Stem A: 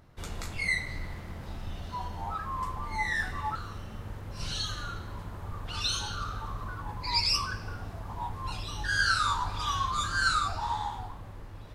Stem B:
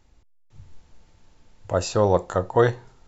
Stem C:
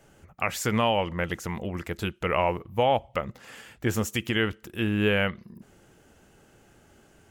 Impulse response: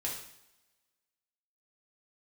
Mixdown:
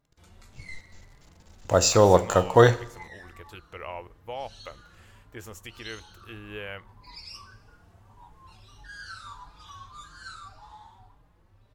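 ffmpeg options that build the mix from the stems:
-filter_complex "[0:a]asplit=2[link_01][link_02];[link_02]adelay=4.5,afreqshift=1.7[link_03];[link_01][link_03]amix=inputs=2:normalize=1,volume=-13dB[link_04];[1:a]aeval=exprs='sgn(val(0))*max(abs(val(0))-0.00316,0)':channel_layout=same,highshelf=frequency=3800:gain=11.5,volume=1dB,asplit=2[link_05][link_06];[link_06]volume=-13dB[link_07];[2:a]equalizer=frequency=180:width=1.3:gain=-12.5,adelay=1500,volume=-12.5dB[link_08];[3:a]atrim=start_sample=2205[link_09];[link_07][link_09]afir=irnorm=-1:irlink=0[link_10];[link_04][link_05][link_08][link_10]amix=inputs=4:normalize=0"

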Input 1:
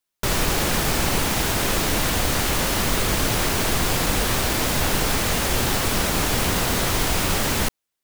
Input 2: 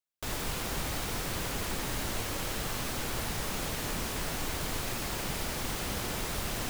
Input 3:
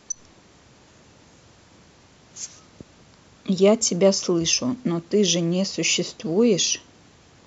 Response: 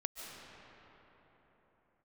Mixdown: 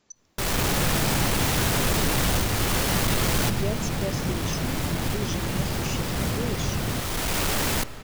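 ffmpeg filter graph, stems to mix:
-filter_complex "[0:a]asoftclip=type=tanh:threshold=-23dB,adelay=150,volume=0.5dB,asplit=2[link_01][link_02];[link_02]volume=-11dB[link_03];[1:a]lowpass=4900,equalizer=frequency=130:width=0.51:gain=13.5,adelay=300,volume=0dB[link_04];[2:a]volume=-15dB,asplit=2[link_05][link_06];[link_06]apad=whole_len=361170[link_07];[link_01][link_07]sidechaincompress=threshold=-48dB:ratio=8:attack=25:release=601[link_08];[3:a]atrim=start_sample=2205[link_09];[link_03][link_09]afir=irnorm=-1:irlink=0[link_10];[link_08][link_04][link_05][link_10]amix=inputs=4:normalize=0"

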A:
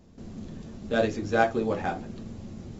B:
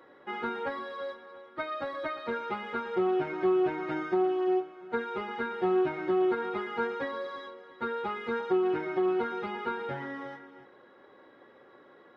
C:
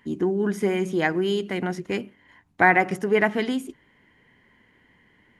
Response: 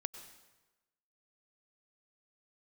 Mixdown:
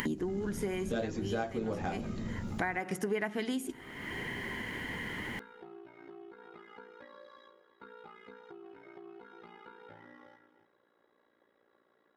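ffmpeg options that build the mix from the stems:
-filter_complex "[0:a]lowshelf=frequency=460:gain=6.5,volume=-3.5dB,asplit=2[link_01][link_02];[1:a]acompressor=threshold=-33dB:ratio=6,aeval=exprs='val(0)*sin(2*PI*29*n/s)':channel_layout=same,volume=-16.5dB,asplit=2[link_03][link_04];[link_04]volume=-4dB[link_05];[2:a]acompressor=mode=upward:threshold=-26dB:ratio=2.5,volume=1.5dB,asplit=2[link_06][link_07];[link_07]volume=-20dB[link_08];[link_02]apad=whole_len=237792[link_09];[link_06][link_09]sidechaincompress=threshold=-44dB:ratio=8:attack=16:release=281[link_10];[3:a]atrim=start_sample=2205[link_11];[link_05][link_08]amix=inputs=2:normalize=0[link_12];[link_12][link_11]afir=irnorm=-1:irlink=0[link_13];[link_01][link_03][link_10][link_13]amix=inputs=4:normalize=0,highshelf=frequency=5400:gain=8,acompressor=threshold=-31dB:ratio=6"

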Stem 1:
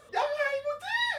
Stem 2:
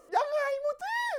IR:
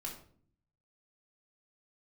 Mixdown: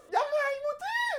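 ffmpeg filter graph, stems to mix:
-filter_complex "[0:a]volume=-6.5dB[link_01];[1:a]volume=0dB[link_02];[link_01][link_02]amix=inputs=2:normalize=0"

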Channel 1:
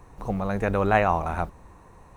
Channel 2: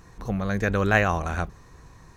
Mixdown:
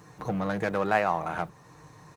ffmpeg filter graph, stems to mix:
ffmpeg -i stem1.wav -i stem2.wav -filter_complex "[0:a]highpass=frequency=340:poles=1,volume=-3.5dB,asplit=2[link_01][link_02];[1:a]acrossover=split=3300[link_03][link_04];[link_04]acompressor=threshold=-58dB:ratio=4:attack=1:release=60[link_05];[link_03][link_05]amix=inputs=2:normalize=0,aeval=exprs='(tanh(22.4*val(0)+0.7)-tanh(0.7))/22.4':channel_layout=same,aecho=1:1:6.6:0.85,volume=-1,volume=1dB[link_06];[link_02]apad=whole_len=95768[link_07];[link_06][link_07]sidechaincompress=threshold=-32dB:ratio=8:attack=28:release=523[link_08];[link_01][link_08]amix=inputs=2:normalize=0,highpass=frequency=70:width=0.5412,highpass=frequency=70:width=1.3066" out.wav

